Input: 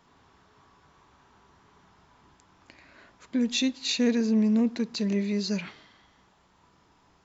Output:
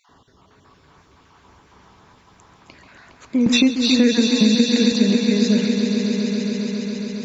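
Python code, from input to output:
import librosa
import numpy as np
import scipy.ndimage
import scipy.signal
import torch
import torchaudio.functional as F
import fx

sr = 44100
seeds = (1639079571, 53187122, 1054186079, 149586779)

y = fx.spec_dropout(x, sr, seeds[0], share_pct=33)
y = fx.echo_swell(y, sr, ms=137, loudest=5, wet_db=-9.0)
y = fx.band_squash(y, sr, depth_pct=100, at=(3.46, 4.92))
y = y * librosa.db_to_amplitude(7.5)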